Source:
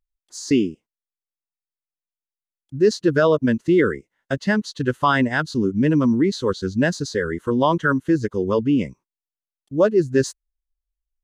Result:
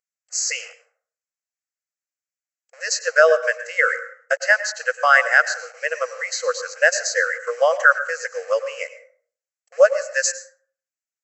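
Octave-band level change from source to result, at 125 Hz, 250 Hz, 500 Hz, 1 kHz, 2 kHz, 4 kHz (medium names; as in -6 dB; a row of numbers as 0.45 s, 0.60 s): under -40 dB, under -40 dB, 0.0 dB, +2.5 dB, +9.5 dB, +3.0 dB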